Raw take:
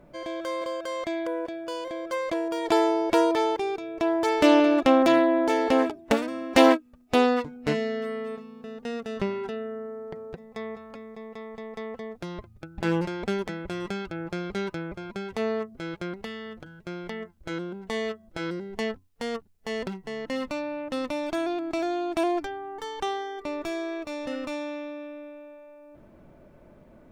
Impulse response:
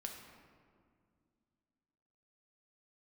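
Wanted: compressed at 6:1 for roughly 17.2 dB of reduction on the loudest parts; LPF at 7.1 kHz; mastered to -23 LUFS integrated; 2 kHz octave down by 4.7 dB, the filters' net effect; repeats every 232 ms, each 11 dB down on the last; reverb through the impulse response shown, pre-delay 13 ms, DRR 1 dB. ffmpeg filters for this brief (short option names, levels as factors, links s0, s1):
-filter_complex "[0:a]lowpass=7100,equalizer=f=2000:t=o:g=-6,acompressor=threshold=0.0251:ratio=6,aecho=1:1:232|464|696:0.282|0.0789|0.0221,asplit=2[s0][s1];[1:a]atrim=start_sample=2205,adelay=13[s2];[s1][s2]afir=irnorm=-1:irlink=0,volume=1.19[s3];[s0][s3]amix=inputs=2:normalize=0,volume=3.76"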